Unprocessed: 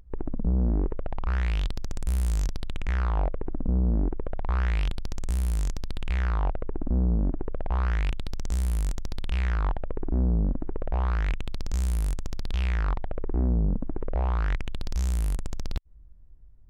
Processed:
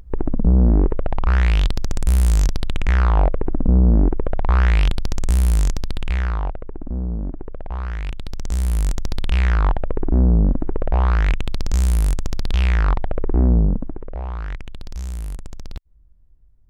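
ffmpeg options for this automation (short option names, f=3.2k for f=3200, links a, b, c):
-af "volume=20dB,afade=t=out:st=5.56:d=1.07:silence=0.281838,afade=t=in:st=8.01:d=1.08:silence=0.316228,afade=t=out:st=13.57:d=0.44:silence=0.281838"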